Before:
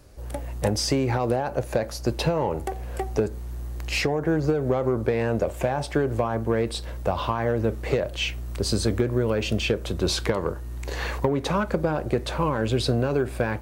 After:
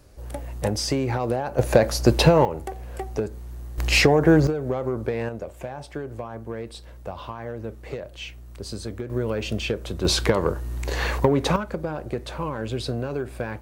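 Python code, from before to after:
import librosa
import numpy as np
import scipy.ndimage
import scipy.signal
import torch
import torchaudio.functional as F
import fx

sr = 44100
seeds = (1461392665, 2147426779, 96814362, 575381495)

y = fx.gain(x, sr, db=fx.steps((0.0, -1.0), (1.59, 8.0), (2.45, -3.0), (3.78, 7.5), (4.47, -3.0), (5.29, -9.5), (9.1, -2.5), (10.05, 4.0), (11.56, -5.0)))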